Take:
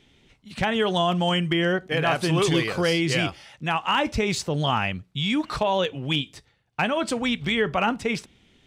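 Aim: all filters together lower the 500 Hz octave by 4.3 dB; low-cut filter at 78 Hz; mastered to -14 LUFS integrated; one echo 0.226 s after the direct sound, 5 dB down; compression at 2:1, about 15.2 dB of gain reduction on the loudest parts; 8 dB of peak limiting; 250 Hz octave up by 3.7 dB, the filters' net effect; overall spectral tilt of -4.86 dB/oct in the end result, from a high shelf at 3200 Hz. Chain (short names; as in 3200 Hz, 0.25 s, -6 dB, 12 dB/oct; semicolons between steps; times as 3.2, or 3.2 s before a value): HPF 78 Hz; bell 250 Hz +8 dB; bell 500 Hz -8.5 dB; high shelf 3200 Hz -8 dB; compressor 2:1, threshold -46 dBFS; limiter -31.5 dBFS; echo 0.226 s -5 dB; gain +25.5 dB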